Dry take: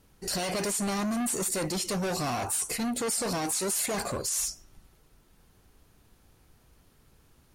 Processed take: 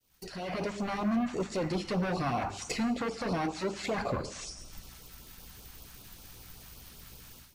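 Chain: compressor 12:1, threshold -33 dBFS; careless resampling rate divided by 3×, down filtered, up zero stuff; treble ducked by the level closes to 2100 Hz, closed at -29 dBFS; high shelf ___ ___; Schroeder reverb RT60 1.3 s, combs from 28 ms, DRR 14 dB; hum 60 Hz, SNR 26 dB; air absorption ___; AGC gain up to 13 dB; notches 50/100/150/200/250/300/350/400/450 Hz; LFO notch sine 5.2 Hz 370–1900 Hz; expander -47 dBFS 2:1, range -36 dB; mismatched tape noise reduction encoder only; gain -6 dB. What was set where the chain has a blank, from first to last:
5100 Hz, +11.5 dB, 61 m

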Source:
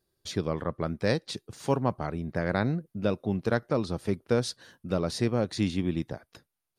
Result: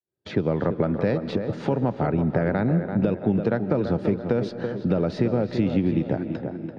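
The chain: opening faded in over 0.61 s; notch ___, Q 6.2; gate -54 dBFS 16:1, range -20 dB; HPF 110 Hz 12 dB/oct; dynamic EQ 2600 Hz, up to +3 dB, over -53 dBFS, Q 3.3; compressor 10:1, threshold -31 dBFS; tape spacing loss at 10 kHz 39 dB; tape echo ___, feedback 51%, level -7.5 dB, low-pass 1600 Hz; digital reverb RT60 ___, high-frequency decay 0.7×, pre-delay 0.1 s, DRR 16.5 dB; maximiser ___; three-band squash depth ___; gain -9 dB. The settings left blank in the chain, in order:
1100 Hz, 0.335 s, 1.9 s, +24 dB, 40%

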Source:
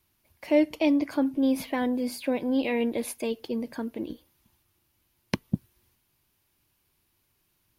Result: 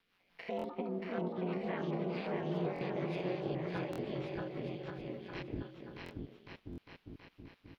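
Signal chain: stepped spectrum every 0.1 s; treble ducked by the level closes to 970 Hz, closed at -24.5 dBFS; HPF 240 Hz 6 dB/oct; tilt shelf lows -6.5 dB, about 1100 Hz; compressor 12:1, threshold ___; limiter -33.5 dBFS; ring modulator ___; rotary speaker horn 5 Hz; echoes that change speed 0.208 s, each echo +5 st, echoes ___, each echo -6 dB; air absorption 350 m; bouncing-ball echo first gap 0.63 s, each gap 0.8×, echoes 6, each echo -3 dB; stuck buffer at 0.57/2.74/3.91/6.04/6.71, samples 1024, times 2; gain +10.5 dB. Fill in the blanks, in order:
-41 dBFS, 92 Hz, 2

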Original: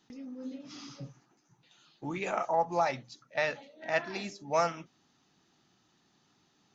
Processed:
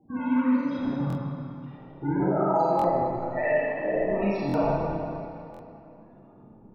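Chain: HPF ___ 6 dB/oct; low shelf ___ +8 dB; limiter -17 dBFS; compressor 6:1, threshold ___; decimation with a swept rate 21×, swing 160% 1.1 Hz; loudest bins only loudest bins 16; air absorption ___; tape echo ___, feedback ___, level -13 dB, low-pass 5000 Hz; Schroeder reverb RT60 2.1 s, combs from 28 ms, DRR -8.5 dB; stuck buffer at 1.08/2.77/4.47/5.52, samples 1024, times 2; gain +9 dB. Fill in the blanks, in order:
110 Hz, 190 Hz, -37 dBFS, 140 m, 0.179 s, 73%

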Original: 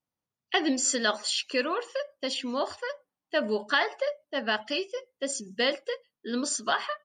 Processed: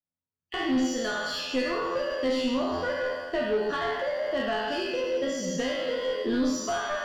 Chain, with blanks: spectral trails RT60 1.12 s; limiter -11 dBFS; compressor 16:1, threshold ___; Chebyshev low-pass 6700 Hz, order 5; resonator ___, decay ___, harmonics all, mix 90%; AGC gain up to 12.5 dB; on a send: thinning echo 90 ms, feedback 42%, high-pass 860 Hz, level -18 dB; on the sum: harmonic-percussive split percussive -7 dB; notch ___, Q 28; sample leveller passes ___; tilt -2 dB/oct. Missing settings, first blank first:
-32 dBFS, 86 Hz, 0.5 s, 4300 Hz, 2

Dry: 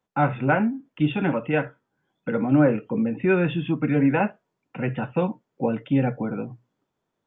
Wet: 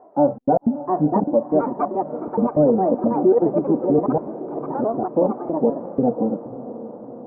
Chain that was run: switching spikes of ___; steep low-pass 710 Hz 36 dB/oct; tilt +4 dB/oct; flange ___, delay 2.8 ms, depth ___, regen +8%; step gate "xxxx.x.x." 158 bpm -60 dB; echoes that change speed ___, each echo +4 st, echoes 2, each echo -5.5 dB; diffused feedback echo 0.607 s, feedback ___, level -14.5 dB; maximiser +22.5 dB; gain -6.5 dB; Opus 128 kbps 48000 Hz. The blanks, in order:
-23 dBFS, 0.6 Hz, 2.2 ms, 0.745 s, 61%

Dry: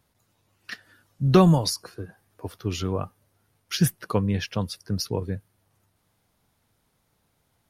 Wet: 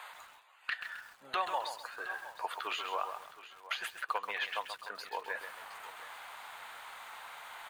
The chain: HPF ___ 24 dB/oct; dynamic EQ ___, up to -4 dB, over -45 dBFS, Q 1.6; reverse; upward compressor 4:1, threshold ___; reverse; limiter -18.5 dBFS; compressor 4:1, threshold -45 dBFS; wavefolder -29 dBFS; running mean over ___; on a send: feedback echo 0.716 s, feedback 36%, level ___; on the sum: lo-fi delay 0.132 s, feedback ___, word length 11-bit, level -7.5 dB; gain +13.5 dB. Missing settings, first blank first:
860 Hz, 1200 Hz, -47 dBFS, 8 samples, -16 dB, 35%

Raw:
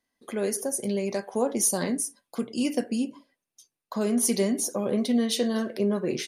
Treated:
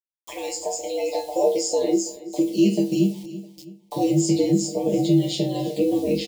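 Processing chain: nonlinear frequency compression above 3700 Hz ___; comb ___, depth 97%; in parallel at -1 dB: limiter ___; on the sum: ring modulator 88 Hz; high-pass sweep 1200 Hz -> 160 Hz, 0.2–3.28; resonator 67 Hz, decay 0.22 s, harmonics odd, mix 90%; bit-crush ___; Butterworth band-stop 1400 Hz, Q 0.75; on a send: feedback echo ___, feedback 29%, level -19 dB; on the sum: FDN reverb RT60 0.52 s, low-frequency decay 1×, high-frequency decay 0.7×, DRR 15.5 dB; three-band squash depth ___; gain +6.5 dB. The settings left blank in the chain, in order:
1.5:1, 7.4 ms, -18.5 dBFS, 9-bit, 0.329 s, 40%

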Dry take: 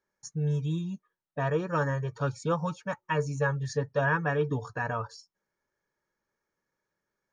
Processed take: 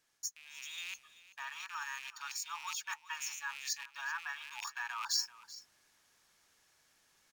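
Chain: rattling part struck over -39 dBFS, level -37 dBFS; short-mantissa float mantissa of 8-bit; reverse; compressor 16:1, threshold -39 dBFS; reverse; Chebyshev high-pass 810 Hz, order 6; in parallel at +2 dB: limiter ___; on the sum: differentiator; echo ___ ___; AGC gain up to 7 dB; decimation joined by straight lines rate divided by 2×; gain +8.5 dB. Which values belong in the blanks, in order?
-41.5 dBFS, 0.385 s, -17.5 dB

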